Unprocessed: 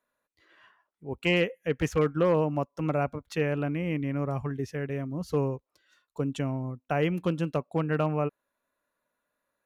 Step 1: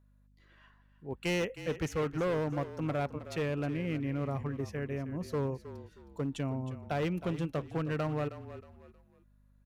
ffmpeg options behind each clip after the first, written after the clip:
-filter_complex "[0:a]volume=23.5dB,asoftclip=hard,volume=-23.5dB,aeval=exprs='val(0)+0.00112*(sin(2*PI*50*n/s)+sin(2*PI*2*50*n/s)/2+sin(2*PI*3*50*n/s)/3+sin(2*PI*4*50*n/s)/4+sin(2*PI*5*50*n/s)/5)':c=same,asplit=4[a][b][c][d];[b]adelay=315,afreqshift=-33,volume=-13dB[e];[c]adelay=630,afreqshift=-66,volume=-22.6dB[f];[d]adelay=945,afreqshift=-99,volume=-32.3dB[g];[a][e][f][g]amix=inputs=4:normalize=0,volume=-4dB"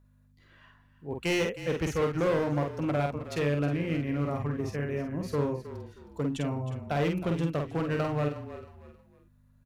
-filter_complex "[0:a]asplit=2[a][b];[b]adelay=48,volume=-4dB[c];[a][c]amix=inputs=2:normalize=0,volume=3dB"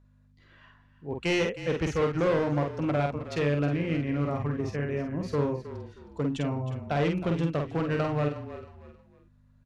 -af "lowpass=6.3k,volume=1.5dB"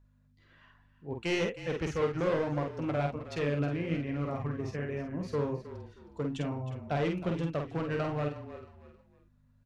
-af "flanger=delay=1.1:depth=8:regen=68:speed=1.2:shape=sinusoidal"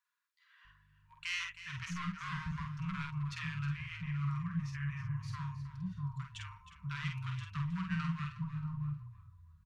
-filter_complex "[0:a]afftfilt=real='re*(1-between(b*sr/4096,200,920))':imag='im*(1-between(b*sr/4096,200,920))':win_size=4096:overlap=0.75,acrossover=split=830[a][b];[a]adelay=650[c];[c][b]amix=inputs=2:normalize=0,volume=-1.5dB"

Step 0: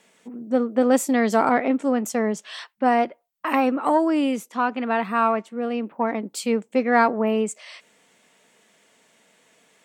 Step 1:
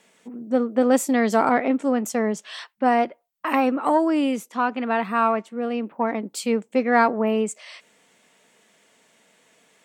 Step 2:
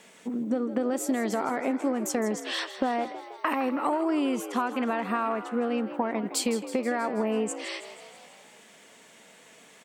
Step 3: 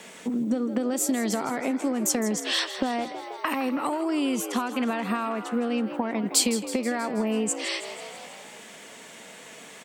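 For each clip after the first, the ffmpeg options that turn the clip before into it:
-af anull
-filter_complex "[0:a]alimiter=limit=-14dB:level=0:latency=1:release=195,acompressor=threshold=-30dB:ratio=6,asplit=2[a][b];[b]asplit=7[c][d][e][f][g][h][i];[c]adelay=161,afreqshift=57,volume=-13dB[j];[d]adelay=322,afreqshift=114,volume=-17dB[k];[e]adelay=483,afreqshift=171,volume=-21dB[l];[f]adelay=644,afreqshift=228,volume=-25dB[m];[g]adelay=805,afreqshift=285,volume=-29.1dB[n];[h]adelay=966,afreqshift=342,volume=-33.1dB[o];[i]adelay=1127,afreqshift=399,volume=-37.1dB[p];[j][k][l][m][n][o][p]amix=inputs=7:normalize=0[q];[a][q]amix=inputs=2:normalize=0,volume=5.5dB"
-filter_complex "[0:a]acrossover=split=180|3000[a][b][c];[b]acompressor=threshold=-43dB:ratio=2[d];[a][d][c]amix=inputs=3:normalize=0,volume=8.5dB"

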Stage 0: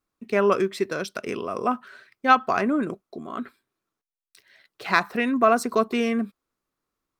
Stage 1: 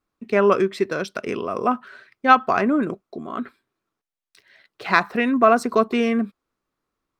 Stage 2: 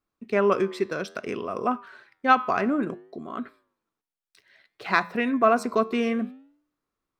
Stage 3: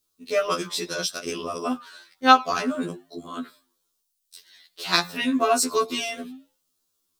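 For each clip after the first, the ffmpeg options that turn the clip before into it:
-af "highshelf=f=6.3k:g=-10,volume=3.5dB"
-af "flanger=delay=8.4:depth=3.9:regen=-90:speed=0.6:shape=sinusoidal"
-af "aexciter=amount=7.4:drive=4:freq=3.1k,afftfilt=real='re*2*eq(mod(b,4),0)':imag='im*2*eq(mod(b,4),0)':win_size=2048:overlap=0.75,volume=1.5dB"

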